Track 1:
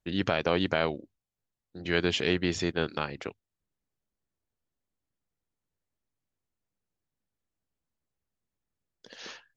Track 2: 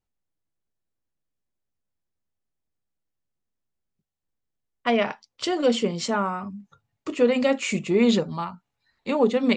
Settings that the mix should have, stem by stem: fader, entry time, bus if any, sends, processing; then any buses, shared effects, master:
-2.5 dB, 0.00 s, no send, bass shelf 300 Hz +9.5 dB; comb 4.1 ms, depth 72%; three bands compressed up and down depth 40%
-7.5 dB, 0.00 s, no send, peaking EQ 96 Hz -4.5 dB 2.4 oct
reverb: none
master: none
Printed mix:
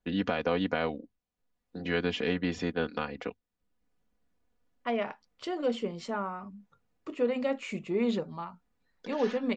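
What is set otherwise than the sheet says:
stem 1: missing bass shelf 300 Hz +9.5 dB; master: extra low-pass 2 kHz 6 dB/octave

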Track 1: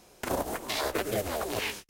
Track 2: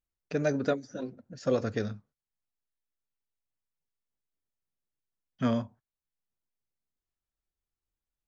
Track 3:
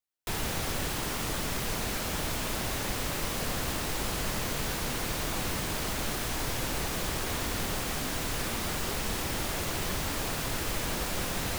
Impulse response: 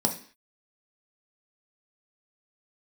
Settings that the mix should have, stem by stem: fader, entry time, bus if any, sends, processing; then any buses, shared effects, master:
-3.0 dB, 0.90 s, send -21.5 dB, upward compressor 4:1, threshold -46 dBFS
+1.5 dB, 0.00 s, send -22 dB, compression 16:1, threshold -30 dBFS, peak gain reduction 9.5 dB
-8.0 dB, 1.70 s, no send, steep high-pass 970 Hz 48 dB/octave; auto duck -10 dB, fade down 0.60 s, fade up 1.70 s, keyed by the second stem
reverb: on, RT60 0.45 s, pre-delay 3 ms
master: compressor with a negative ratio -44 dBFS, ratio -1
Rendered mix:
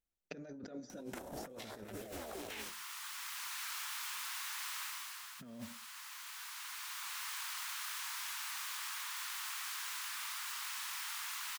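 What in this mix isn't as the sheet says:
stem 1 -3.0 dB -> -10.5 dB; stem 2 +1.5 dB -> -5.0 dB

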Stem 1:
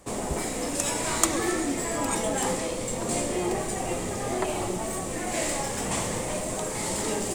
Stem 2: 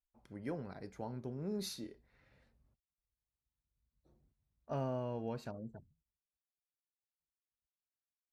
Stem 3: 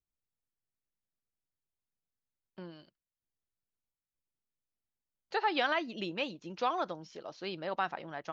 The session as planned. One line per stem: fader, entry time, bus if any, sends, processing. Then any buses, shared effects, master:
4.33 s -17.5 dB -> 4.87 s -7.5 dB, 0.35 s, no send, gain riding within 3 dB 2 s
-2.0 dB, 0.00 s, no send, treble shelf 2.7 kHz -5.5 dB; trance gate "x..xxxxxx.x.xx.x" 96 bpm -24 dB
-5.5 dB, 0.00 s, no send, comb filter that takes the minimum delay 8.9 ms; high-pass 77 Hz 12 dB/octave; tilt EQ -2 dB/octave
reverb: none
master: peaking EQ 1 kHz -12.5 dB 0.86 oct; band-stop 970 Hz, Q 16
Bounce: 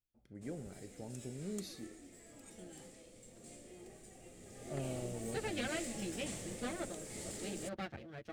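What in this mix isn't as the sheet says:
stem 1 -17.5 dB -> -26.0 dB; stem 2: missing trance gate "x..xxxxxx.x.xx.x" 96 bpm -24 dB

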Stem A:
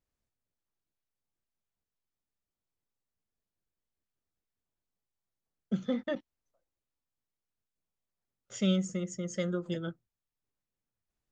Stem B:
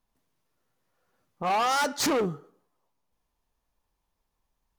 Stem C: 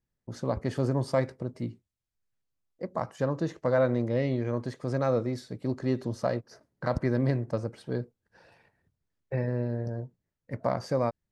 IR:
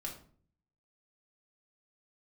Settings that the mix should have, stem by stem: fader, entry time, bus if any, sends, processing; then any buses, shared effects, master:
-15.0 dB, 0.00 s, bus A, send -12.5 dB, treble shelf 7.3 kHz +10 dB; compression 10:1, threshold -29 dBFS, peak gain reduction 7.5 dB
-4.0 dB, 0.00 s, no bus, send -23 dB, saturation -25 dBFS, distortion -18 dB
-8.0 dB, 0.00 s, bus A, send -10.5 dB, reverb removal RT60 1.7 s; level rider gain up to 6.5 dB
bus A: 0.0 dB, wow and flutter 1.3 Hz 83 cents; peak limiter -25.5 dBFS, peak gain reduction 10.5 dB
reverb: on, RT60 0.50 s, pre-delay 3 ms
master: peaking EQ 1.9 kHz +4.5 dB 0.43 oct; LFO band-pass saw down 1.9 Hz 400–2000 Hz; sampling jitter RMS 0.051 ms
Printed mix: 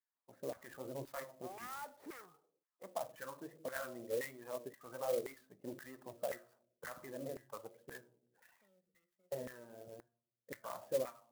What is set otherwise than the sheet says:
stem A -15.0 dB -> -26.0 dB; stem B -4.0 dB -> -14.5 dB

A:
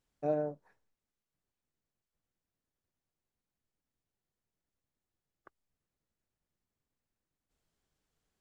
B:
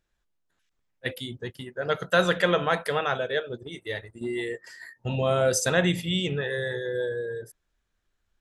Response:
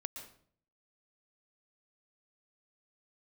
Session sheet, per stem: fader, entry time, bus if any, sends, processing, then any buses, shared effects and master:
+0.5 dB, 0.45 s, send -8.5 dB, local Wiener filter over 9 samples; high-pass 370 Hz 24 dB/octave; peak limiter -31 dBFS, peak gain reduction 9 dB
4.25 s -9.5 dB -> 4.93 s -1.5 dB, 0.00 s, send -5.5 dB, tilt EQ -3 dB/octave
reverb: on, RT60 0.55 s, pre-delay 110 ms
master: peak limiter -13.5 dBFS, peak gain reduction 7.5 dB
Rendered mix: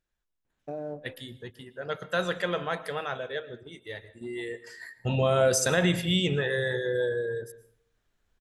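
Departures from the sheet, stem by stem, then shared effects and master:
stem A: missing high-pass 370 Hz 24 dB/octave; stem B: missing tilt EQ -3 dB/octave

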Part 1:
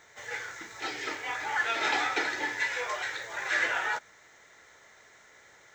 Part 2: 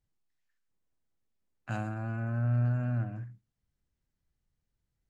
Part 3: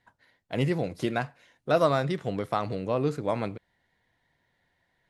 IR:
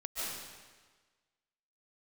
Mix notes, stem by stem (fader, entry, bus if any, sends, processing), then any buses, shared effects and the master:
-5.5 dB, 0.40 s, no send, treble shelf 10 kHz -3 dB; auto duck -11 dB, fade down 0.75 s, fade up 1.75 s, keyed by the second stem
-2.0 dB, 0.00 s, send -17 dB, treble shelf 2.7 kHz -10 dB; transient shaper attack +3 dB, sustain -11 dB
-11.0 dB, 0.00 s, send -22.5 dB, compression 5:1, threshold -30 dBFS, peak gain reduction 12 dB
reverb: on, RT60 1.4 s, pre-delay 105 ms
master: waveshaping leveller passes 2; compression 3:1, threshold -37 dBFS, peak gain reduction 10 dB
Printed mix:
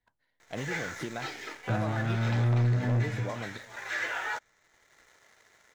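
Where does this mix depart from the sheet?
stem 1: missing treble shelf 10 kHz -3 dB; master: missing compression 3:1, threshold -37 dBFS, peak gain reduction 10 dB

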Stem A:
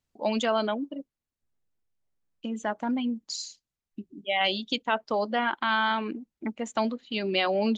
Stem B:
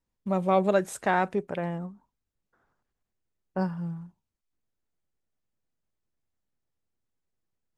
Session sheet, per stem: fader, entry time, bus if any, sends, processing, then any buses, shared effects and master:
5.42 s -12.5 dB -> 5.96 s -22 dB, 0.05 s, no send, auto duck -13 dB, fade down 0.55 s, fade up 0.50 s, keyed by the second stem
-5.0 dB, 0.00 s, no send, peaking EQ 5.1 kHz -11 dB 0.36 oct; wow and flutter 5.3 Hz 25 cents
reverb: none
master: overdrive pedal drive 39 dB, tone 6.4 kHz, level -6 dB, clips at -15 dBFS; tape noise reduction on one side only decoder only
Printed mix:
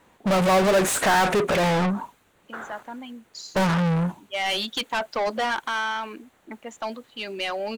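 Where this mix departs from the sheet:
stem A -12.5 dB -> -21.5 dB; stem B -5.0 dB -> +4.5 dB

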